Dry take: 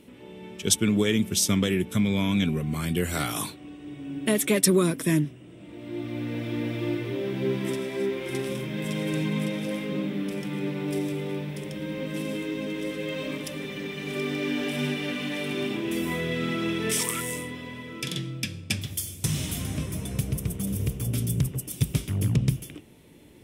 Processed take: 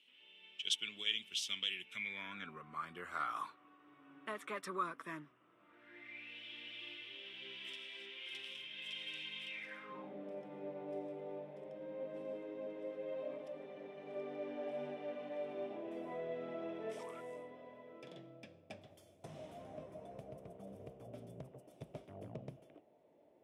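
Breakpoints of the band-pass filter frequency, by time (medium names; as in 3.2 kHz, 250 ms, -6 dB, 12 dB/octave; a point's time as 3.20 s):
band-pass filter, Q 5.4
1.78 s 3 kHz
2.52 s 1.2 kHz
5.64 s 1.2 kHz
6.38 s 3 kHz
9.46 s 3 kHz
10.15 s 650 Hz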